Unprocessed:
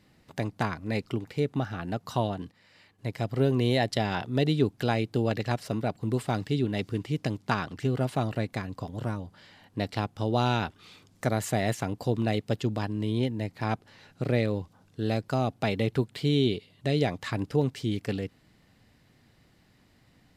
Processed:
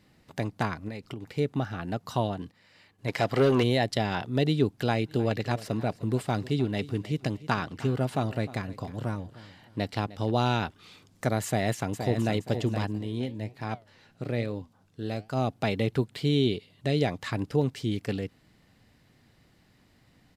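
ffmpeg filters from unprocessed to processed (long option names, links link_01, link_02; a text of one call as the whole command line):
ffmpeg -i in.wav -filter_complex "[0:a]asettb=1/sr,asplit=3[link_01][link_02][link_03];[link_01]atrim=end=0.884[link_04];[link_02]atrim=start=0.88:end=1.31,asetpts=PTS-STARTPTS,afade=type=in:duration=0.004:curve=qsin,afade=type=out:start_time=0.426:duration=0.004:curve=qsin,acompressor=threshold=-32dB:ratio=10:attack=3.2:release=140:knee=1:detection=peak[link_05];[link_03]atrim=start=1.306[link_06];[link_04][link_05]acrossfade=duration=0.004:curve1=hsin:curve2=qsin[link_07];[link_07][link_06]acrossfade=duration=0.004:curve1=qsin:curve2=hsin,asplit=3[link_08][link_09][link_10];[link_08]afade=type=out:start_time=3.07:duration=0.02[link_11];[link_09]asplit=2[link_12][link_13];[link_13]highpass=frequency=720:poles=1,volume=20dB,asoftclip=type=tanh:threshold=-12.5dB[link_14];[link_12][link_14]amix=inputs=2:normalize=0,lowpass=frequency=4300:poles=1,volume=-6dB,afade=type=in:start_time=3.07:duration=0.02,afade=type=out:start_time=3.62:duration=0.02[link_15];[link_10]afade=type=in:start_time=3.62:duration=0.02[link_16];[link_11][link_15][link_16]amix=inputs=3:normalize=0,asplit=3[link_17][link_18][link_19];[link_17]afade=type=out:start_time=4.99:duration=0.02[link_20];[link_18]aecho=1:1:306|612|918:0.133|0.04|0.012,afade=type=in:start_time=4.99:duration=0.02,afade=type=out:start_time=10.3:duration=0.02[link_21];[link_19]afade=type=in:start_time=10.3:duration=0.02[link_22];[link_20][link_21][link_22]amix=inputs=3:normalize=0,asplit=2[link_23][link_24];[link_24]afade=type=in:start_time=11.46:duration=0.01,afade=type=out:start_time=12.37:duration=0.01,aecho=0:1:470|940|1410|1880:0.421697|0.126509|0.0379527|0.0113858[link_25];[link_23][link_25]amix=inputs=2:normalize=0,asplit=3[link_26][link_27][link_28];[link_26]afade=type=out:start_time=12.97:duration=0.02[link_29];[link_27]flanger=delay=6.3:depth=6.6:regen=81:speed=1.1:shape=triangular,afade=type=in:start_time=12.97:duration=0.02,afade=type=out:start_time=15.36:duration=0.02[link_30];[link_28]afade=type=in:start_time=15.36:duration=0.02[link_31];[link_29][link_30][link_31]amix=inputs=3:normalize=0" out.wav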